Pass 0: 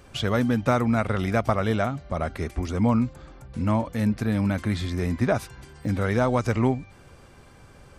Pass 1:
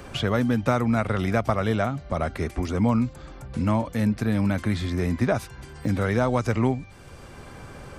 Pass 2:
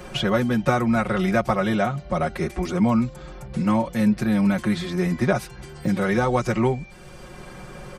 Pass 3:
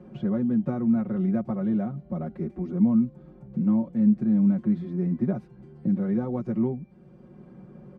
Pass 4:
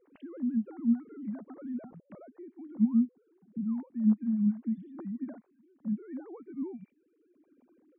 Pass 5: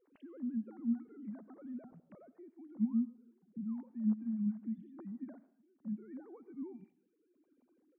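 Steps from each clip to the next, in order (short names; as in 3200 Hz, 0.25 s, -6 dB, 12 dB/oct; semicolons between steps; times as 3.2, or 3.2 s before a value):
three-band squash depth 40%
comb 5.5 ms, depth 99%
band-pass 220 Hz, Q 1.9
sine-wave speech; gain -7.5 dB
reverb RT60 0.55 s, pre-delay 78 ms, DRR 16.5 dB; gain -7.5 dB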